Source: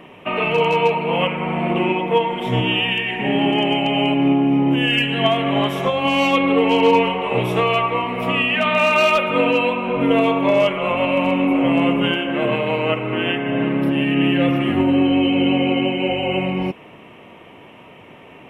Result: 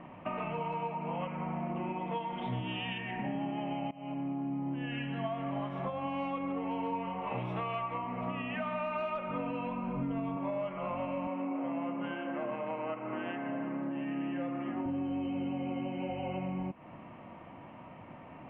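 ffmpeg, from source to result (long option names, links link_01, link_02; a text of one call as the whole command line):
ffmpeg -i in.wav -filter_complex "[0:a]asettb=1/sr,asplit=3[link_01][link_02][link_03];[link_01]atrim=end=2.014[link_04];[link_02]atrim=start=2.01:end=2.98,asetpts=PTS-STARTPTS,afade=type=in:duration=0.004:curve=qsin,afade=type=out:start_time=0.966:duration=0.004:curve=qsin,lowpass=frequency=3800:width_type=q:width=3.9[link_05];[link_03]atrim=start=2.976[link_06];[link_04][link_05]acrossfade=duration=0.004:curve1=hsin:curve2=qsin[link_07];[link_07][link_06]acrossfade=duration=0.004:curve1=qsin:curve2=hsin,asettb=1/sr,asplit=3[link_08][link_09][link_10];[link_08]atrim=end=7.274[link_11];[link_09]atrim=start=7.27:end=7.98,asetpts=PTS-STARTPTS,afade=type=in:duration=0.004:curve=qsin,afade=type=out:start_time=0.706:duration=0.004:curve=qsin,highshelf=frequency=2200:gain=9[link_12];[link_10]atrim=start=7.976[link_13];[link_11][link_12]acrossfade=duration=0.004:curve1=hsin:curve2=qsin[link_14];[link_14][link_13]acrossfade=duration=0.004:curve1=qsin:curve2=hsin,asettb=1/sr,asplit=3[link_15][link_16][link_17];[link_15]atrim=end=9.114[link_18];[link_16]atrim=start=9.11:end=10.37,asetpts=PTS-STARTPTS,afade=type=in:duration=0.004:curve=qsin,afade=type=out:start_time=1.256:duration=0.004:curve=qsin,asubboost=boost=7.5:cutoff=250[link_19];[link_17]atrim=start=10.366[link_20];[link_18][link_19]acrossfade=duration=0.004:curve1=hsin:curve2=qsin[link_21];[link_21][link_20]acrossfade=duration=0.004:curve1=qsin:curve2=hsin,asettb=1/sr,asplit=3[link_22][link_23][link_24];[link_22]atrim=end=11.274[link_25];[link_23]atrim=start=11.27:end=14.86,asetpts=PTS-STARTPTS,afade=type=in:duration=0.004:curve=qsin,afade=type=out:start_time=3.586:duration=0.004:curve=qsin,highpass=260,lowpass=3100[link_26];[link_24]atrim=start=14.856[link_27];[link_25][link_26]acrossfade=duration=0.004:curve1=hsin:curve2=qsin[link_28];[link_28][link_27]acrossfade=duration=0.004:curve1=qsin:curve2=hsin,asplit=2[link_29][link_30];[link_29]atrim=end=3.91,asetpts=PTS-STARTPTS,afade=type=out:start_time=3.906:duration=0.004:curve=hsin:silence=0.0841395[link_31];[link_30]atrim=start=3.91,asetpts=PTS-STARTPTS,afade=type=in:duration=1.1:silence=0.0841395[link_32];[link_31][link_32]concat=n=2:v=0:a=1,lowpass=1300,equalizer=frequency=420:width=3.2:gain=-14.5,acompressor=threshold=-32dB:ratio=4,volume=-3dB" out.wav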